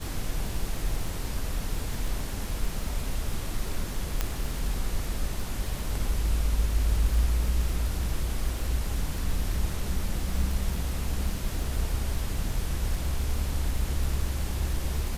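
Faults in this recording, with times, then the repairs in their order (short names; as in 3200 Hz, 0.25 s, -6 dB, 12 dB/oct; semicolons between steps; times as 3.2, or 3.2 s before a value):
crackle 44/s -32 dBFS
4.21 pop -11 dBFS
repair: de-click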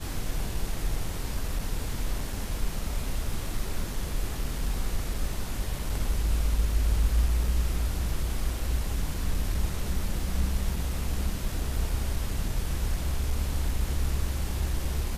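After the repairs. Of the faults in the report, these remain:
none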